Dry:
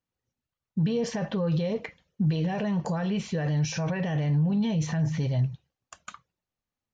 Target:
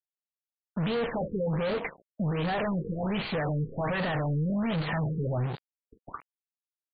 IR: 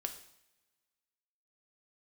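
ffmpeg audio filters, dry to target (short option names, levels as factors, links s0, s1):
-filter_complex "[0:a]acrusher=bits=7:dc=4:mix=0:aa=0.000001,asplit=2[s0][s1];[s1]highpass=f=720:p=1,volume=44.7,asoftclip=type=tanh:threshold=0.141[s2];[s0][s2]amix=inputs=2:normalize=0,lowpass=f=3100:p=1,volume=0.501,afftfilt=real='re*lt(b*sr/1024,480*pow(4800/480,0.5+0.5*sin(2*PI*1.3*pts/sr)))':imag='im*lt(b*sr/1024,480*pow(4800/480,0.5+0.5*sin(2*PI*1.3*pts/sr)))':win_size=1024:overlap=0.75,volume=0.531"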